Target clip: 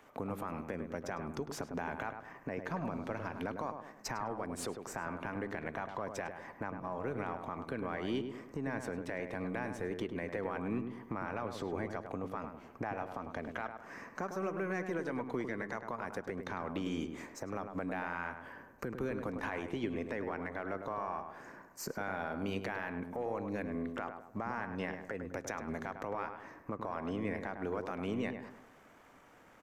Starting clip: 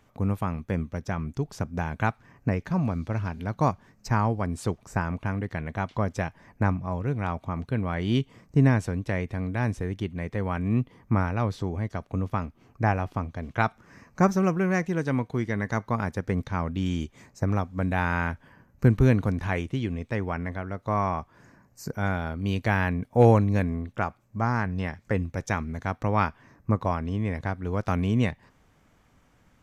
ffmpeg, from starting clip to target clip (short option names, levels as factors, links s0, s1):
-filter_complex "[0:a]aeval=exprs='if(lt(val(0),0),0.708*val(0),val(0))':c=same,acompressor=threshold=0.0282:ratio=8,acrossover=split=260 2400:gain=0.126 1 0.224[s0][s1][s2];[s0][s1][s2]amix=inputs=3:normalize=0,alimiter=level_in=3.16:limit=0.0631:level=0:latency=1:release=165,volume=0.316,highshelf=f=4400:g=10.5,asplit=2[s3][s4];[s4]adelay=103,lowpass=f=1500:p=1,volume=0.501,asplit=2[s5][s6];[s6]adelay=103,lowpass=f=1500:p=1,volume=0.45,asplit=2[s7][s8];[s8]adelay=103,lowpass=f=1500:p=1,volume=0.45,asplit=2[s9][s10];[s10]adelay=103,lowpass=f=1500:p=1,volume=0.45,asplit=2[s11][s12];[s12]adelay=103,lowpass=f=1500:p=1,volume=0.45[s13];[s3][s5][s7][s9][s11][s13]amix=inputs=6:normalize=0,volume=2.11"